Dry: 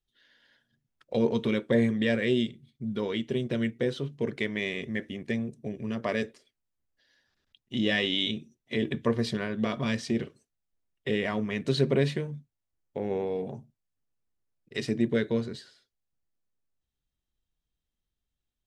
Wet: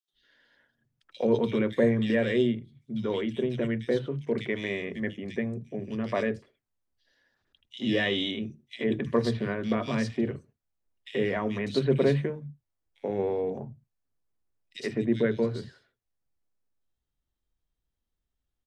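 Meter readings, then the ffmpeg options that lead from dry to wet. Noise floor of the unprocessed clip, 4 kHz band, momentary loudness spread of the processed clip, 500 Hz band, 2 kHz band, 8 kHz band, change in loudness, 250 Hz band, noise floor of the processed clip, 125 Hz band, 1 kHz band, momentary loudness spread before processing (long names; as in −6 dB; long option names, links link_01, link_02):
below −85 dBFS, −3.5 dB, 13 LU, +2.0 dB, −1.0 dB, can't be measured, +1.0 dB, +0.5 dB, −84 dBFS, +0.5 dB, +2.0 dB, 13 LU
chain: -filter_complex "[0:a]highshelf=frequency=3600:gain=-7.5,acrossover=split=170|2700[link_01][link_02][link_03];[link_02]adelay=80[link_04];[link_01]adelay=130[link_05];[link_05][link_04][link_03]amix=inputs=3:normalize=0,volume=2.5dB"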